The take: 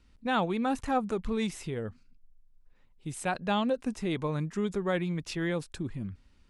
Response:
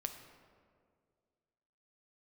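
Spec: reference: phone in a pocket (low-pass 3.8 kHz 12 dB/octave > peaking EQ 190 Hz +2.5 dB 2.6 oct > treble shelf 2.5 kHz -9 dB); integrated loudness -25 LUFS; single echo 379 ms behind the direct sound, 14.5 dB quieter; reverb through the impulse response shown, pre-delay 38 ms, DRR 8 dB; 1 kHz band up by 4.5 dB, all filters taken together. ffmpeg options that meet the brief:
-filter_complex "[0:a]equalizer=f=1000:t=o:g=7,aecho=1:1:379:0.188,asplit=2[s0][s1];[1:a]atrim=start_sample=2205,adelay=38[s2];[s1][s2]afir=irnorm=-1:irlink=0,volume=0.447[s3];[s0][s3]amix=inputs=2:normalize=0,lowpass=3800,equalizer=f=190:t=o:w=2.6:g=2.5,highshelf=f=2500:g=-9,volume=1.5"

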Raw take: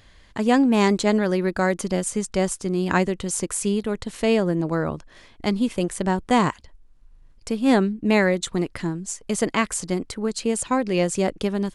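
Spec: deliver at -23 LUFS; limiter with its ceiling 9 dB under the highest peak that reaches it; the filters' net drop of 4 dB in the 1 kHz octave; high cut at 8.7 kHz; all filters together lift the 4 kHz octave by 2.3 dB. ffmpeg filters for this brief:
-af "lowpass=8700,equalizer=f=1000:t=o:g=-5.5,equalizer=f=4000:t=o:g=3.5,volume=1.41,alimiter=limit=0.282:level=0:latency=1"

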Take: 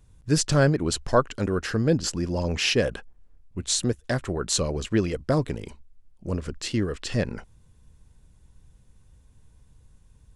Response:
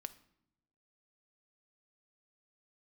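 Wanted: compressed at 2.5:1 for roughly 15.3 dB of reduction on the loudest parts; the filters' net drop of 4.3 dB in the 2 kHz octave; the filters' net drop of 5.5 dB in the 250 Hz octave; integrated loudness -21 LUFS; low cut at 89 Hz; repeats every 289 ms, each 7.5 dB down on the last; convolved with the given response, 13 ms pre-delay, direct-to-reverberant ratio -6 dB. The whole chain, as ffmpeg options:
-filter_complex "[0:a]highpass=89,equalizer=f=250:t=o:g=-8,equalizer=f=2000:t=o:g=-6,acompressor=threshold=0.00891:ratio=2.5,aecho=1:1:289|578|867|1156|1445:0.422|0.177|0.0744|0.0312|0.0131,asplit=2[s0][s1];[1:a]atrim=start_sample=2205,adelay=13[s2];[s1][s2]afir=irnorm=-1:irlink=0,volume=3.16[s3];[s0][s3]amix=inputs=2:normalize=0,volume=3.55"

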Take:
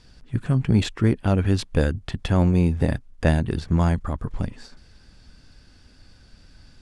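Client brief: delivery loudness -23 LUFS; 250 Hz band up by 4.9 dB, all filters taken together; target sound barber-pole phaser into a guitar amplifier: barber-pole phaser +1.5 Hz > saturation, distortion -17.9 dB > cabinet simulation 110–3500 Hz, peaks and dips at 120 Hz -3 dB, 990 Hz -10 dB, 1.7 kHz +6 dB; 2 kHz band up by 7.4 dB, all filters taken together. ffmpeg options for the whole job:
-filter_complex "[0:a]equalizer=f=250:t=o:g=7.5,equalizer=f=2000:t=o:g=4.5,asplit=2[s0][s1];[s1]afreqshift=1.5[s2];[s0][s2]amix=inputs=2:normalize=1,asoftclip=threshold=0.251,highpass=110,equalizer=f=120:t=q:w=4:g=-3,equalizer=f=990:t=q:w=4:g=-10,equalizer=f=1700:t=q:w=4:g=6,lowpass=f=3500:w=0.5412,lowpass=f=3500:w=1.3066,volume=1.33"

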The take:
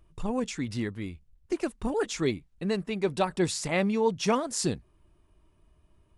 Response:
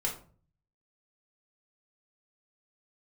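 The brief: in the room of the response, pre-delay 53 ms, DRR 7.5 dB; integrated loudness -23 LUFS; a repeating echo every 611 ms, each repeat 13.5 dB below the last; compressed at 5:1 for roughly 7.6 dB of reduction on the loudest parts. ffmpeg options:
-filter_complex "[0:a]acompressor=threshold=0.0355:ratio=5,aecho=1:1:611|1222:0.211|0.0444,asplit=2[s0][s1];[1:a]atrim=start_sample=2205,adelay=53[s2];[s1][s2]afir=irnorm=-1:irlink=0,volume=0.251[s3];[s0][s3]amix=inputs=2:normalize=0,volume=3.35"

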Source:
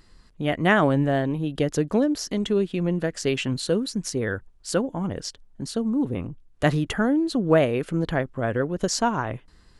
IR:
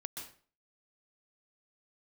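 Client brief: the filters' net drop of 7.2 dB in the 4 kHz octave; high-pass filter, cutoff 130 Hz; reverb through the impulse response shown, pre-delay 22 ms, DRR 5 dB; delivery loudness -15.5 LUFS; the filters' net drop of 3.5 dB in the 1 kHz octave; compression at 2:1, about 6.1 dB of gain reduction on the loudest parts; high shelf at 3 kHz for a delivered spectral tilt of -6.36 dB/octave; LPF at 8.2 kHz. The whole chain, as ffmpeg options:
-filter_complex "[0:a]highpass=130,lowpass=8200,equalizer=f=1000:t=o:g=-4,highshelf=f=3000:g=-6.5,equalizer=f=4000:t=o:g=-4,acompressor=threshold=0.0562:ratio=2,asplit=2[s0][s1];[1:a]atrim=start_sample=2205,adelay=22[s2];[s1][s2]afir=irnorm=-1:irlink=0,volume=0.668[s3];[s0][s3]amix=inputs=2:normalize=0,volume=4.22"

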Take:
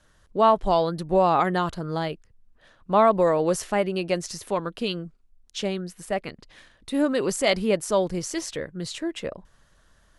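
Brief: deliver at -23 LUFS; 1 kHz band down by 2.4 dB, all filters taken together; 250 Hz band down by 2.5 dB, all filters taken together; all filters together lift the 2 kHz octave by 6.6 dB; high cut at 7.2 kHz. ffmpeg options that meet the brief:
-af "lowpass=7200,equalizer=f=250:t=o:g=-3.5,equalizer=f=1000:t=o:g=-5,equalizer=f=2000:t=o:g=9,volume=1.33"

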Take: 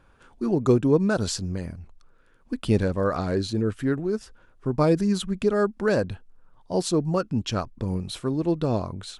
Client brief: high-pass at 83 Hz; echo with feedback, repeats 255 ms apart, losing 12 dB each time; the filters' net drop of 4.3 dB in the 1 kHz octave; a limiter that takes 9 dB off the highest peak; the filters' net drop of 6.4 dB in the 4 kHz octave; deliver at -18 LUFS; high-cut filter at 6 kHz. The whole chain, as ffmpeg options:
-af "highpass=83,lowpass=6000,equalizer=f=1000:t=o:g=-5.5,equalizer=f=4000:t=o:g=-6.5,alimiter=limit=0.126:level=0:latency=1,aecho=1:1:255|510|765:0.251|0.0628|0.0157,volume=3.35"

